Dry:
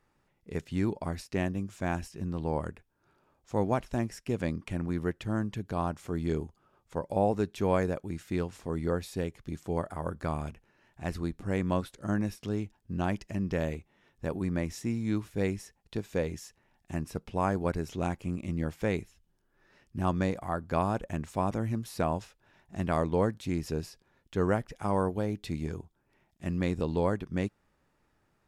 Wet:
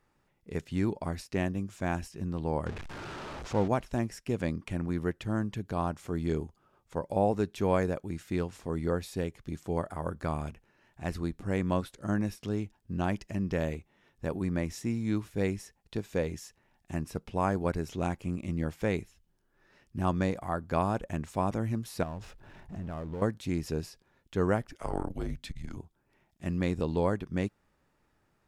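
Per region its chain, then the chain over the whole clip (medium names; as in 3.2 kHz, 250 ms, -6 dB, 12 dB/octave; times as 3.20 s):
2.66–3.68 s: jump at every zero crossing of -34.5 dBFS + distance through air 86 m
22.03–23.22 s: tilt EQ -2 dB/octave + compression 2.5:1, threshold -43 dBFS + power-law waveshaper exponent 0.7
24.70–25.77 s: high-pass 110 Hz 24 dB/octave + frequency shift -170 Hz + transformer saturation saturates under 220 Hz
whole clip: none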